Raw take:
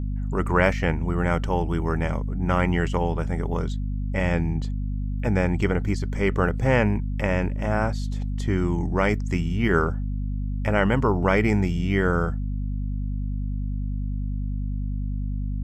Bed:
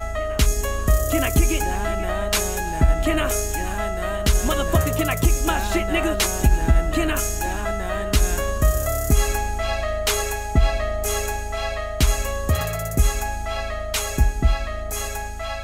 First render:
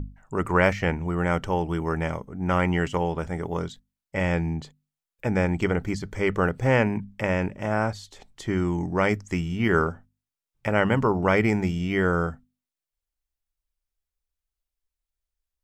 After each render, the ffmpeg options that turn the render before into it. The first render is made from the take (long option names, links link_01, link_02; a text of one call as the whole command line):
ffmpeg -i in.wav -af "bandreject=frequency=50:width_type=h:width=6,bandreject=frequency=100:width_type=h:width=6,bandreject=frequency=150:width_type=h:width=6,bandreject=frequency=200:width_type=h:width=6,bandreject=frequency=250:width_type=h:width=6" out.wav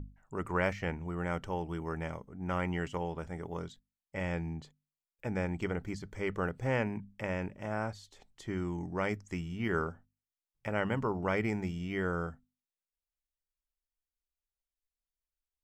ffmpeg -i in.wav -af "volume=-10.5dB" out.wav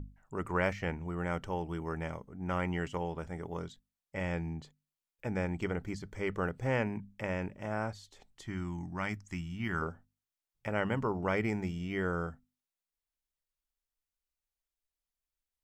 ffmpeg -i in.wav -filter_complex "[0:a]asettb=1/sr,asplit=3[link_01][link_02][link_03];[link_01]atrim=end=8.434[link_04];[link_02]atrim=start=8.43:end=9.82,asetpts=PTS-STARTPTS,afade=type=in:duration=0.004:curve=qsin,afade=type=out:start_time=1.386:duration=0.004:curve=qsin,equalizer=frequency=460:width_type=o:width=0.75:gain=-14.5[link_05];[link_03]atrim=start=9.816[link_06];[link_04][link_05]acrossfade=duration=0.004:curve1=hsin:curve2=qsin[link_07];[link_07][link_06]acrossfade=duration=0.004:curve1=qsin:curve2=hsin" out.wav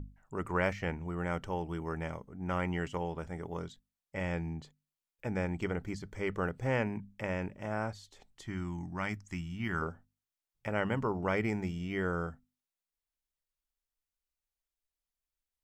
ffmpeg -i in.wav -af anull out.wav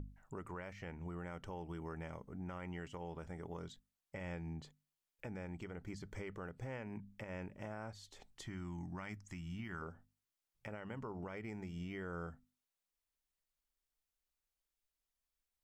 ffmpeg -i in.wav -af "acompressor=threshold=-42dB:ratio=3,alimiter=level_in=11.5dB:limit=-24dB:level=0:latency=1:release=136,volume=-11.5dB" out.wav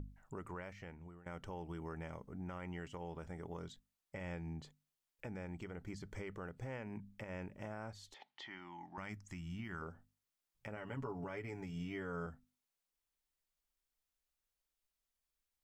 ffmpeg -i in.wav -filter_complex "[0:a]asettb=1/sr,asplit=3[link_01][link_02][link_03];[link_01]atrim=end=8.144[link_04];[link_02]atrim=start=8.14:end=8.98,asetpts=PTS-STARTPTS,afade=type=in:duration=0.004:curve=qsin,afade=type=out:start_time=0.836:duration=0.004:curve=qsin,highpass=380,equalizer=frequency=460:width_type=q:width=4:gain=-6,equalizer=frequency=860:width_type=q:width=4:gain=9,equalizer=frequency=2000:width_type=q:width=4:gain=7,equalizer=frequency=3100:width_type=q:width=4:gain=6,lowpass=frequency=4600:width=0.5412,lowpass=frequency=4600:width=1.3066[link_05];[link_03]atrim=start=8.976[link_06];[link_04][link_05]acrossfade=duration=0.004:curve1=hsin:curve2=qsin[link_07];[link_07][link_06]acrossfade=duration=0.004:curve1=qsin:curve2=hsin,asettb=1/sr,asplit=3[link_08][link_09][link_10];[link_08]atrim=end=10.764[link_11];[link_09]atrim=start=10.76:end=12.26,asetpts=PTS-STARTPTS,afade=type=in:duration=0.004:curve=qsin,afade=type=out:start_time=1.496:duration=0.004:curve=qsin,aecho=1:1:7.1:0.68,atrim=end_sample=66150[link_12];[link_10]atrim=start=12.256[link_13];[link_11][link_12]acrossfade=duration=0.004:curve1=hsin:curve2=qsin[link_14];[link_14][link_13]acrossfade=duration=0.004:curve1=qsin:curve2=hsin,asplit=2[link_15][link_16];[link_15]atrim=end=1.26,asetpts=PTS-STARTPTS,afade=type=out:start_time=0.62:duration=0.64:silence=0.133352[link_17];[link_16]atrim=start=1.26,asetpts=PTS-STARTPTS,afade=type=in:duration=0.004:curve=hsin:silence=0.133352[link_18];[link_17][link_18]concat=n=2:v=0:a=1" out.wav